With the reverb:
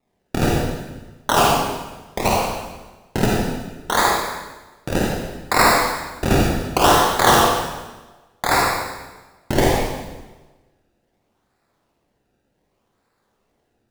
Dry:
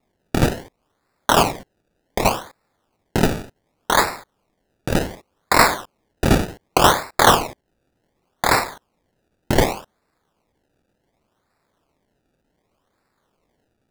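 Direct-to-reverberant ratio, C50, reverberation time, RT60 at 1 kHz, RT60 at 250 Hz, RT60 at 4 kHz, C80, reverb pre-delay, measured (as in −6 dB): −3.0 dB, −1.5 dB, 1.2 s, 1.2 s, 1.3 s, 1.1 s, 2.0 dB, 39 ms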